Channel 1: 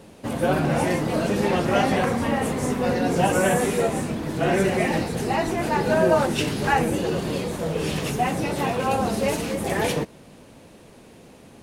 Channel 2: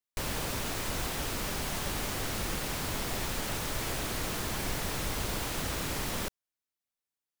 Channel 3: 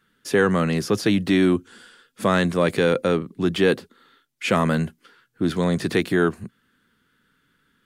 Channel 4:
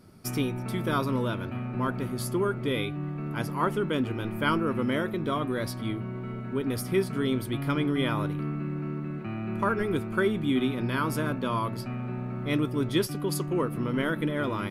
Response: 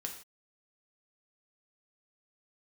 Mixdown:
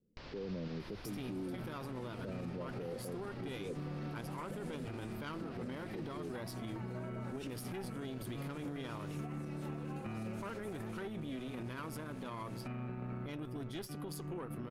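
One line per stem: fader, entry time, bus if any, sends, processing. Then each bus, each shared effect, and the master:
-7.0 dB, 1.05 s, bus A, no send, compressor, threshold -29 dBFS, peak gain reduction 14 dB
-9.5 dB, 0.00 s, bus A, no send, Chebyshev low-pass 5000 Hz, order 4
-6.5 dB, 0.00 s, bus B, no send, steep low-pass 610 Hz 48 dB/oct; chopper 0.81 Hz, depth 60%, duty 55%; compressor 2:1, threshold -25 dBFS, peak gain reduction 6.5 dB
+2.5 dB, 0.80 s, bus B, no send, tube stage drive 21 dB, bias 0.8; tremolo saw down 2.7 Hz, depth 55%
bus A: 0.0 dB, compressor, threshold -47 dBFS, peak gain reduction 13 dB
bus B: 0.0 dB, compressor, threshold -34 dBFS, peak gain reduction 11 dB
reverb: off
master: limiter -33.5 dBFS, peak gain reduction 10.5 dB

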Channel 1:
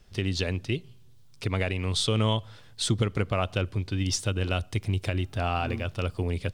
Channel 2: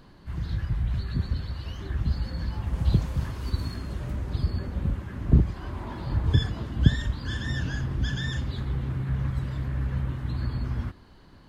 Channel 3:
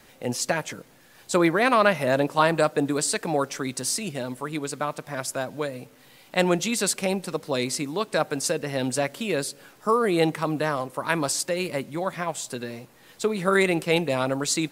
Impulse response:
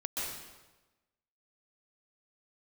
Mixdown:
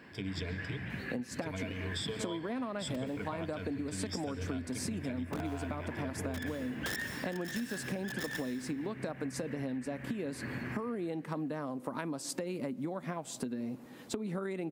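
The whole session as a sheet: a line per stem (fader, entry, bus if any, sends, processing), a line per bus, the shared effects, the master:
-11.5 dB, 0.00 s, no bus, send -16 dB, ripple EQ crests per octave 1.7, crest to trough 18 dB
-4.0 dB, 0.00 s, bus A, send -14 dB, Chebyshev high-pass 250 Hz, order 2; band shelf 2100 Hz +15 dB 1 oct; wrapped overs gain 19.5 dB
-2.5 dB, 0.90 s, bus A, no send, bell 250 Hz +12 dB 0.51 oct
bus A: 0.0 dB, tilt shelf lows +5 dB, about 1400 Hz; compressor, threshold -26 dBFS, peak gain reduction 13.5 dB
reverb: on, RT60 1.2 s, pre-delay 0.119 s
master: HPF 69 Hz; compressor 6:1, threshold -34 dBFS, peak gain reduction 12 dB

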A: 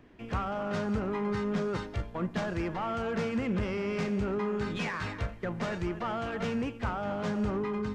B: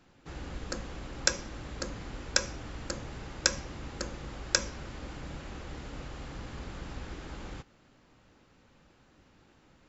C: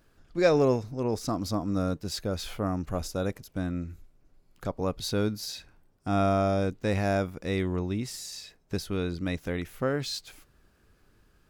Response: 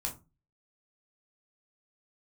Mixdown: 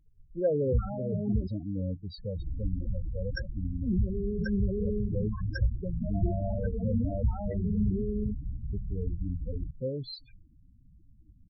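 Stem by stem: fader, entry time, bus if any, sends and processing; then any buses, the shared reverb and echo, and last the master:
-2.5 dB, 0.40 s, muted 1.47–3.82, send -22.5 dB, dry
-2.0 dB, 2.10 s, no send, dry
-9.5 dB, 0.00 s, send -21 dB, thirty-one-band EQ 500 Hz +6 dB, 2000 Hz +9 dB, 4000 Hz +5 dB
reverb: on, RT60 0.30 s, pre-delay 3 ms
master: low shelf 150 Hz +12 dB; loudest bins only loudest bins 8

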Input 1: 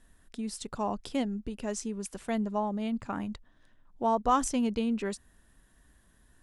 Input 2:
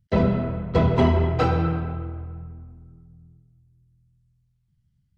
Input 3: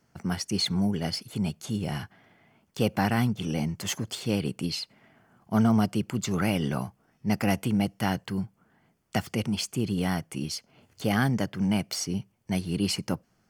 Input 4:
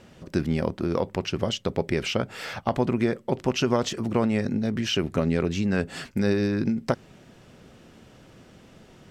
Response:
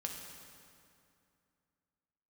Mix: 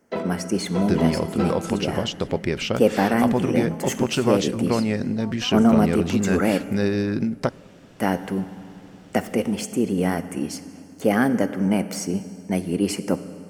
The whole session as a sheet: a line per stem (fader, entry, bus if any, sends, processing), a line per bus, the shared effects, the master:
-1.0 dB, 1.15 s, no send, compressor, threshold -39 dBFS, peak gain reduction 18 dB
+2.0 dB, 0.00 s, no send, HPF 250 Hz 24 dB/oct; auto duck -9 dB, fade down 0.25 s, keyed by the third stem
-1.5 dB, 0.00 s, muted 6.58–7.99, send -5 dB, graphic EQ 125/250/500/2000/4000/8000 Hz -10/+7/+9/+4/-10/+4 dB
+0.5 dB, 0.55 s, send -19.5 dB, dry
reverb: on, RT60 2.5 s, pre-delay 3 ms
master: dry

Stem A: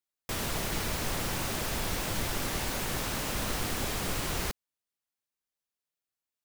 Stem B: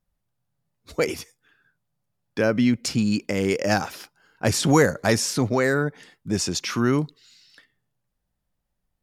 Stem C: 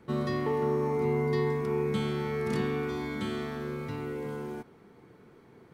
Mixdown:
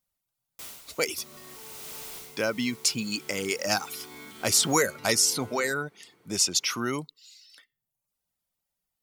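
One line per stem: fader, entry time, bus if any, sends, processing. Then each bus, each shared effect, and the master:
-13.0 dB, 0.30 s, no send, auto duck -12 dB, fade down 0.20 s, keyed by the second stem
-3.5 dB, 0.00 s, no send, reverb removal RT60 0.68 s
-9.5 dB, 1.10 s, no send, negative-ratio compressor -36 dBFS, ratio -1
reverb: off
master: tilt +3 dB/oct; notch 1700 Hz, Q 8.8

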